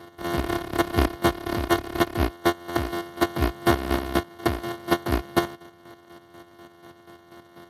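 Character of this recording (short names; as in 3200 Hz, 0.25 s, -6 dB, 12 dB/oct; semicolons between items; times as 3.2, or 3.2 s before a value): a buzz of ramps at a fixed pitch in blocks of 128 samples; chopped level 4.1 Hz, depth 60%, duty 35%; aliases and images of a low sample rate 2500 Hz, jitter 0%; Speex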